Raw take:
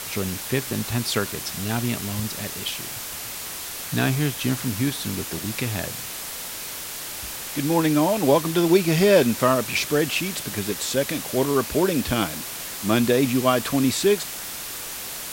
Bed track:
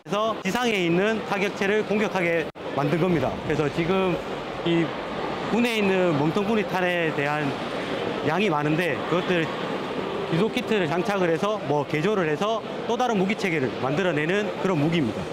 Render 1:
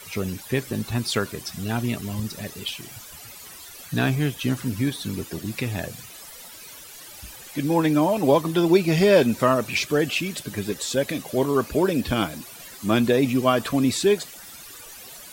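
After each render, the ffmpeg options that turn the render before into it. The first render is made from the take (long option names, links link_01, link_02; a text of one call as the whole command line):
ffmpeg -i in.wav -af "afftdn=noise_reduction=14:noise_floor=-34" out.wav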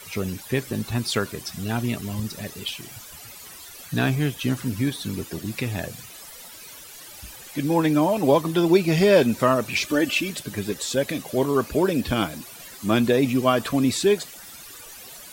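ffmpeg -i in.wav -filter_complex "[0:a]asettb=1/sr,asplit=3[link_01][link_02][link_03];[link_01]atrim=end=9.844[link_04];[link_02]atrim=start=9.84:end=10.3,asetpts=PTS-STARTPTS,afade=type=in:duration=0.004:curve=qsin,afade=type=out:start_time=0.456:duration=0.004:curve=qsin,aecho=1:1:3.4:0.65,atrim=end_sample=20286[link_05];[link_03]atrim=start=10.296[link_06];[link_04][link_05]acrossfade=duration=0.004:curve1=hsin:curve2=qsin[link_07];[link_07][link_06]acrossfade=duration=0.004:curve1=qsin:curve2=hsin" out.wav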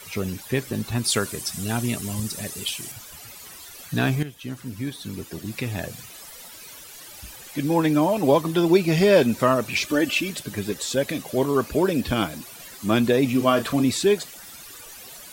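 ffmpeg -i in.wav -filter_complex "[0:a]asettb=1/sr,asplit=3[link_01][link_02][link_03];[link_01]atrim=end=1.044[link_04];[link_02]atrim=start=1.04:end=2.92,asetpts=PTS-STARTPTS,afade=type=in:duration=0.004:curve=qsin,afade=type=out:start_time=1.876:duration=0.004:curve=qsin,equalizer=frequency=9100:width=0.88:gain=10[link_05];[link_03]atrim=start=2.916[link_06];[link_04][link_05]acrossfade=duration=0.004:curve1=hsin:curve2=qsin[link_07];[link_07][link_06]acrossfade=duration=0.004:curve1=qsin:curve2=hsin,asettb=1/sr,asplit=3[link_08][link_09][link_10];[link_08]atrim=end=13.294[link_11];[link_09]atrim=start=13.29:end=13.82,asetpts=PTS-STARTPTS,afade=type=in:duration=0.004:curve=qsin,afade=type=out:start_time=0.526:duration=0.004:curve=qsin,asplit=2[link_12][link_13];[link_13]adelay=35,volume=-9dB[link_14];[link_12][link_14]amix=inputs=2:normalize=0,atrim=end_sample=23373[link_15];[link_10]atrim=start=13.816[link_16];[link_11][link_15]acrossfade=duration=0.004:curve1=hsin:curve2=qsin[link_17];[link_17][link_16]acrossfade=duration=0.004:curve1=qsin:curve2=hsin,asplit=2[link_18][link_19];[link_18]atrim=end=4.23,asetpts=PTS-STARTPTS,afade=type=out:start_time=4.226:duration=0.004:curve=hsin:silence=0.223872[link_20];[link_19]atrim=start=4.23,asetpts=PTS-STARTPTS,afade=type=in:duration=1.69:silence=0.223872[link_21];[link_20][link_21]concat=n=2:v=0:a=1" out.wav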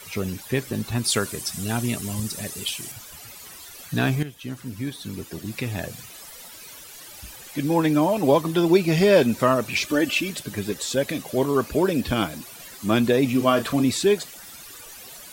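ffmpeg -i in.wav -af anull out.wav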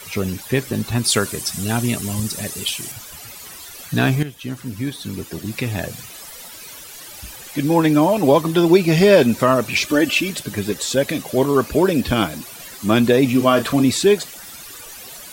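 ffmpeg -i in.wav -af "volume=5dB,alimiter=limit=-2dB:level=0:latency=1" out.wav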